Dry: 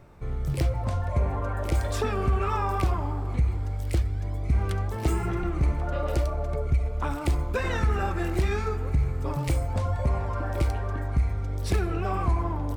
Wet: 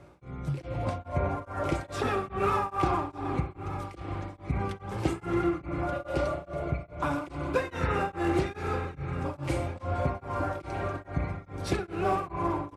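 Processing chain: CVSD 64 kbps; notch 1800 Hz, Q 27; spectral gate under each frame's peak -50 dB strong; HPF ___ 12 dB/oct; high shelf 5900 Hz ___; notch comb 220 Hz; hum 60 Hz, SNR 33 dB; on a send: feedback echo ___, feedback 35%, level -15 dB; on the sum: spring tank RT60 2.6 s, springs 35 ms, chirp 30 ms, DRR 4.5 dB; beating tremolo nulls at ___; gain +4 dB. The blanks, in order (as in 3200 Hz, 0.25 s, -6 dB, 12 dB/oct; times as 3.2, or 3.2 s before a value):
140 Hz, -9 dB, 1.18 s, 2.4 Hz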